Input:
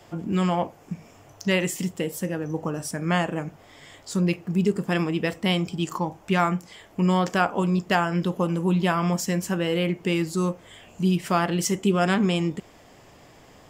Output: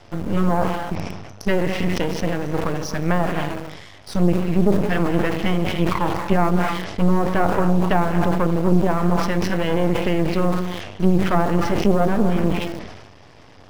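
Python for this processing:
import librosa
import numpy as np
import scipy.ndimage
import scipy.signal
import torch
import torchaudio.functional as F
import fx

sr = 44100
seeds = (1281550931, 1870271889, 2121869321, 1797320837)

p1 = fx.brickwall_lowpass(x, sr, high_hz=6200.0)
p2 = fx.peak_eq(p1, sr, hz=92.0, db=11.5, octaves=0.33)
p3 = fx.rev_gated(p2, sr, seeds[0], gate_ms=300, shape='rising', drr_db=9.5)
p4 = np.maximum(p3, 0.0)
p5 = fx.env_lowpass_down(p4, sr, base_hz=920.0, full_db=-20.0)
p6 = fx.quant_dither(p5, sr, seeds[1], bits=6, dither='none')
p7 = p5 + (p6 * 10.0 ** (-11.0 / 20.0))
p8 = fx.sustainer(p7, sr, db_per_s=45.0)
y = p8 * 10.0 ** (6.0 / 20.0)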